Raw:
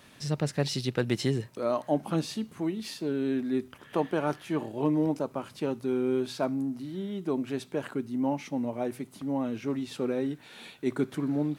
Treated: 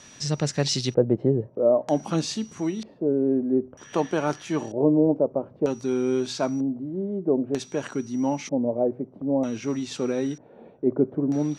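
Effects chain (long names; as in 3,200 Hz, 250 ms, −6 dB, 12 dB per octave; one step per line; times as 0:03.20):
steady tone 5,800 Hz −60 dBFS
auto-filter low-pass square 0.53 Hz 560–6,600 Hz
level +3.5 dB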